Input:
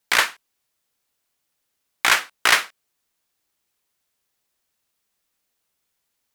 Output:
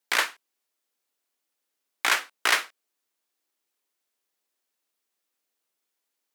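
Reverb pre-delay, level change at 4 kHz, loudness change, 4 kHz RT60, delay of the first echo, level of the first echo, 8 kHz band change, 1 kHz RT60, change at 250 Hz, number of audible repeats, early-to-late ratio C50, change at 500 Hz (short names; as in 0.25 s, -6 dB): none, -6.0 dB, -6.0 dB, none, none, none, -6.0 dB, none, -5.0 dB, none, none, -4.5 dB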